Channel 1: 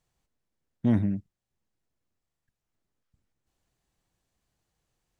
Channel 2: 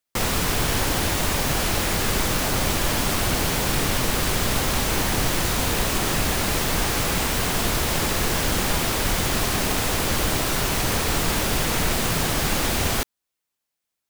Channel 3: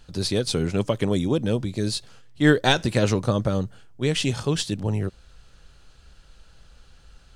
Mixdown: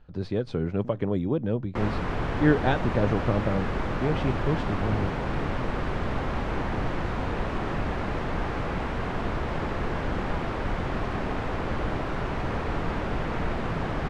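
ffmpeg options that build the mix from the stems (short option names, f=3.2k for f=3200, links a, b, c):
-filter_complex "[0:a]acompressor=threshold=-31dB:ratio=6,volume=-9dB[a];[1:a]adelay=1600,volume=-4dB[b];[2:a]volume=-3.5dB[c];[a][b][c]amix=inputs=3:normalize=0,lowpass=1.6k"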